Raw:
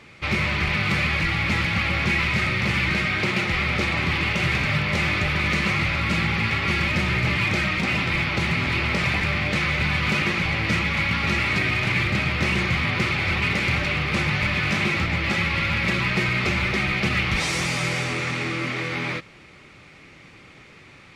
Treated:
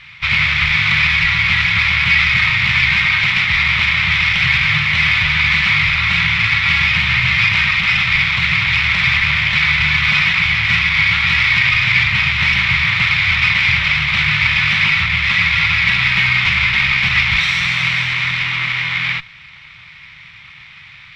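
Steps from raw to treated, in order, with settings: comb filter that takes the minimum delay 0.52 ms; FFT filter 150 Hz 0 dB, 280 Hz -20 dB, 480 Hz -18 dB, 1 kHz +7 dB, 1.6 kHz +4 dB, 2.9 kHz +14 dB, 9.5 kHz -17 dB; trim +3 dB

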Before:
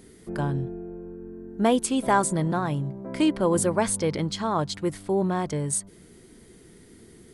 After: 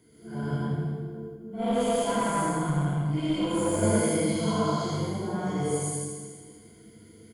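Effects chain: phase randomisation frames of 200 ms; feedback delay 81 ms, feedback 59%, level -8.5 dB; word length cut 12-bit, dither none; rippled EQ curve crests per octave 1.8, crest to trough 12 dB; flange 1.2 Hz, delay 7.3 ms, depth 9.3 ms, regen +88%; high-pass 93 Hz; bass shelf 320 Hz +6 dB; reverberation RT60 1.5 s, pre-delay 92 ms, DRR -5.5 dB; 1.36–3.83 s: valve stage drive 9 dB, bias 0.45; trim -7.5 dB

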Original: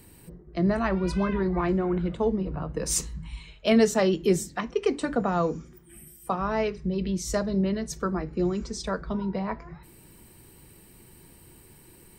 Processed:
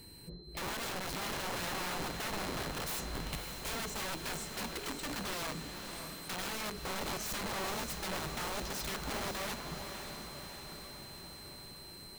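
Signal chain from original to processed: compression 6:1, threshold -29 dBFS, peak gain reduction 13.5 dB; integer overflow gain 31 dB; whistle 4.1 kHz -52 dBFS; echo that smears into a reverb 578 ms, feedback 63%, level -7 dB; trim -3 dB

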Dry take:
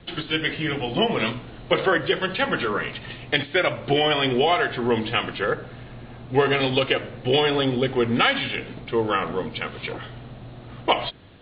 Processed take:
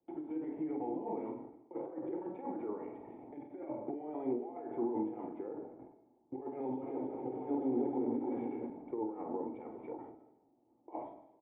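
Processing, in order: gate with hold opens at -28 dBFS; high-pass 51 Hz; three-band isolator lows -19 dB, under 380 Hz, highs -13 dB, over 3.2 kHz; compressor with a negative ratio -27 dBFS, ratio -0.5; peak limiter -20 dBFS, peak gain reduction 9 dB; cascade formant filter u; doubling 46 ms -8 dB; 6.52–8.70 s: bouncing-ball echo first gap 310 ms, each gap 0.7×, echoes 5; algorithmic reverb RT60 0.84 s, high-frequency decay 1×, pre-delay 65 ms, DRR 12.5 dB; endings held to a fixed fall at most 100 dB/s; trim +5 dB

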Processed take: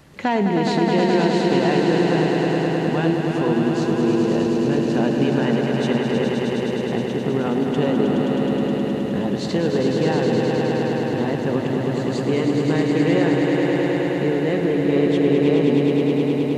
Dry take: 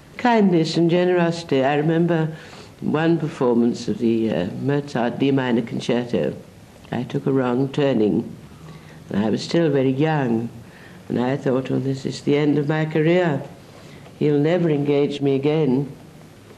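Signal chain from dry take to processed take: echo with a slow build-up 105 ms, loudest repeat 5, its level -5.5 dB; trim -4 dB

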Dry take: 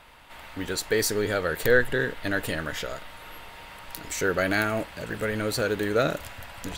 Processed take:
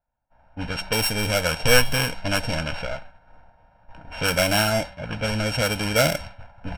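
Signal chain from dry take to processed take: sorted samples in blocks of 16 samples; expander -33 dBFS; level-controlled noise filter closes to 1.1 kHz, open at -21 dBFS; comb 1.3 ms, depth 86%; de-hum 191.2 Hz, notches 21; trim +3 dB

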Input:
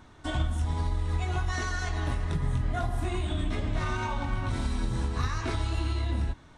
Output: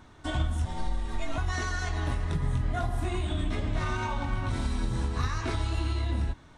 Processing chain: 0.65–1.38 s: frequency shift -81 Hz

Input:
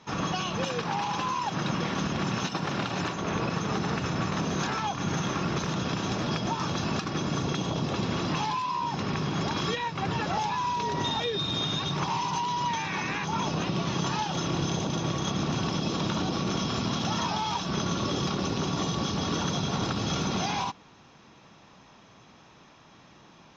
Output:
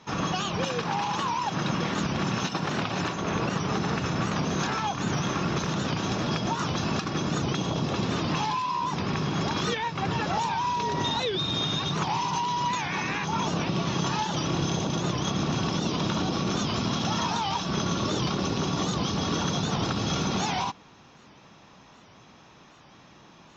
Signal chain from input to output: warped record 78 rpm, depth 160 cents; trim +1.5 dB

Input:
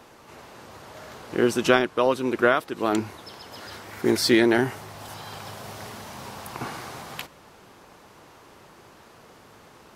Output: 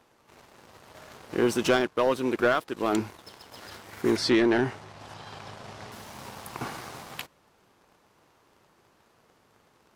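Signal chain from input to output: waveshaping leveller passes 2; 4.16–5.92 s: distance through air 74 m; trim -9 dB

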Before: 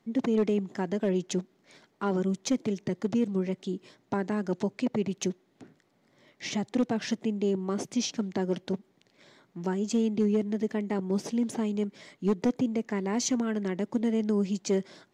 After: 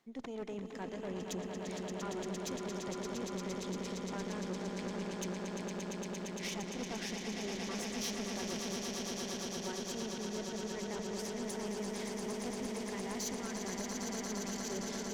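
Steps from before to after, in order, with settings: treble shelf 6.9 kHz +4 dB; reverse; compression 5:1, threshold -38 dBFS, peak gain reduction 15 dB; reverse; bass shelf 390 Hz -10 dB; echo with a slow build-up 115 ms, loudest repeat 8, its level -7 dB; valve stage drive 38 dB, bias 0.6; trim +5.5 dB

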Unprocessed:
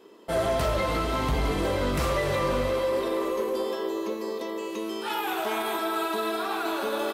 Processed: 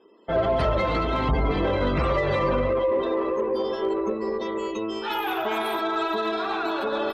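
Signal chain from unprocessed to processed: spectral gate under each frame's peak -25 dB strong; 3.82–4.74 s: comb 5.2 ms, depth 69%; Chebyshev shaper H 6 -29 dB, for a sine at -17.5 dBFS; in parallel at +3 dB: peak limiter -26 dBFS, peak gain reduction 8.5 dB; on the sum: upward expansion 1.5:1, over -41 dBFS

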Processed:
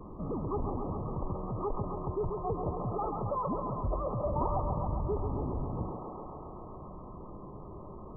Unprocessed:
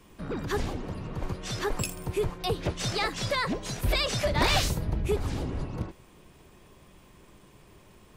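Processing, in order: brick-wall FIR low-pass 1.3 kHz; thinning echo 135 ms, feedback 81%, high-pass 330 Hz, level -7 dB; dynamic bell 940 Hz, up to +3 dB, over -47 dBFS, Q 4.1; level flattener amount 50%; trim -7.5 dB

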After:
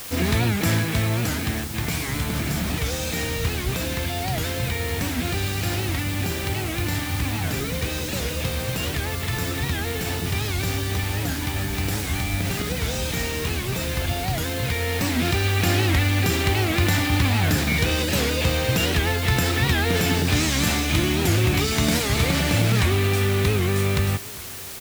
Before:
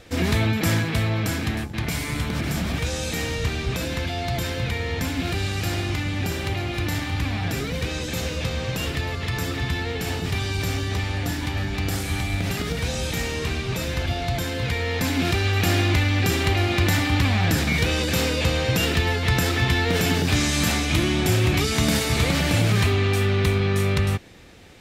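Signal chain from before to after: feedback delay 405 ms, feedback 59%, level -22 dB; word length cut 6-bit, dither triangular; warped record 78 rpm, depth 160 cents

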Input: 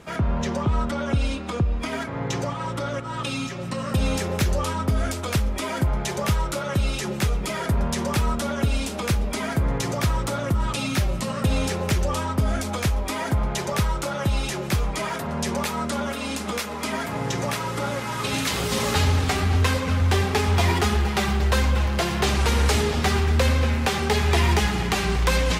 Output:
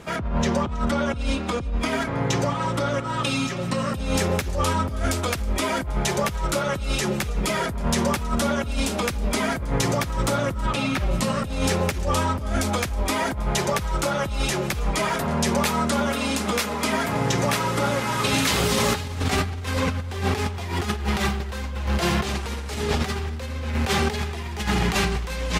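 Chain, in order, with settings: 10.66–11.11 s: tone controls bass -2 dB, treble -10 dB; compressor with a negative ratio -24 dBFS, ratio -0.5; delay 322 ms -21.5 dB; trim +1.5 dB

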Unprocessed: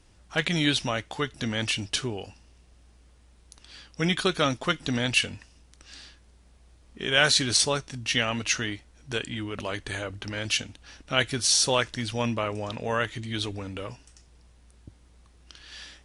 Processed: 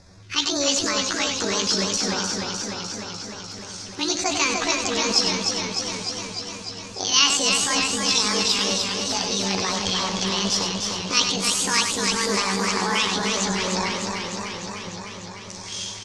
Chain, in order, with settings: rotating-head pitch shifter +11 st; low-pass 5.8 kHz 24 dB/octave; treble shelf 2.5 kHz +10.5 dB; in parallel at 0 dB: compressor with a negative ratio -34 dBFS; on the sum: LFO notch square 2.2 Hz 660–3000 Hz; on a send: delay 98 ms -7 dB; on the sum: modulated delay 301 ms, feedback 75%, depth 73 cents, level -5 dB; trim -1 dB

